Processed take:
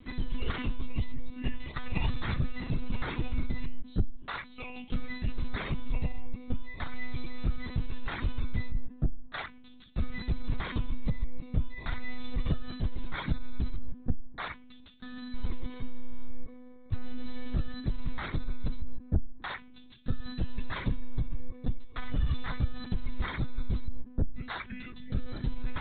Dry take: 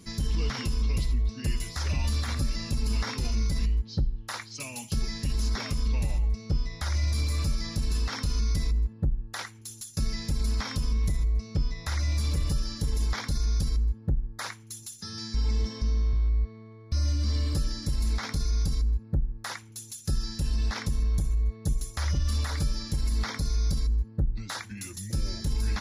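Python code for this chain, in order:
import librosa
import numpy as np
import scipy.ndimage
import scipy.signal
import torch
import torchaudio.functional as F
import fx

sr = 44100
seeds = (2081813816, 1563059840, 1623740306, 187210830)

y = fx.lpc_monotone(x, sr, seeds[0], pitch_hz=250.0, order=16)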